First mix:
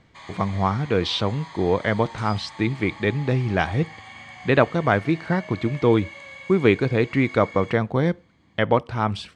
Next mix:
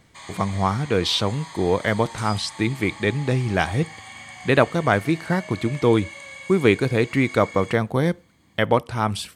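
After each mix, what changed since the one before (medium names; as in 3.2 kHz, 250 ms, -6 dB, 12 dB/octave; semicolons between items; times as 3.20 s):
master: remove distance through air 130 m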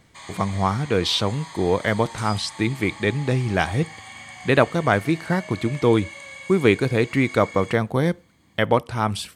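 no change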